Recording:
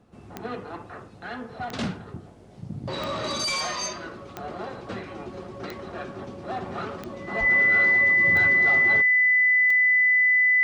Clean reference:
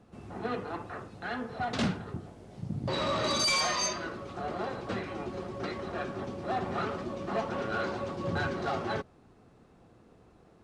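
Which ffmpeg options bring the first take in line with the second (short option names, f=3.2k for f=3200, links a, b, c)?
-filter_complex "[0:a]adeclick=t=4,bandreject=f=2k:w=30,asplit=3[a][b][c];[a]afade=t=out:st=7.39:d=0.02[d];[b]highpass=f=140:w=0.5412,highpass=f=140:w=1.3066,afade=t=in:st=7.39:d=0.02,afade=t=out:st=7.51:d=0.02[e];[c]afade=t=in:st=7.51:d=0.02[f];[d][e][f]amix=inputs=3:normalize=0"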